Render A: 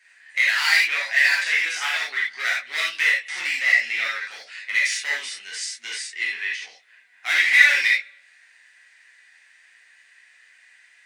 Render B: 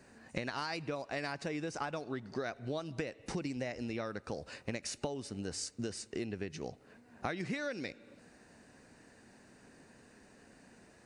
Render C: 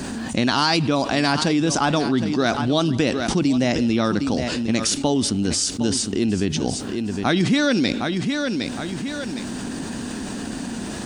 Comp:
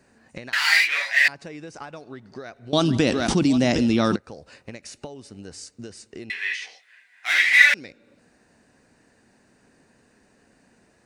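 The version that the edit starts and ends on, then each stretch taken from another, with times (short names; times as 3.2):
B
0.53–1.28 from A
2.73–4.16 from C
6.3–7.74 from A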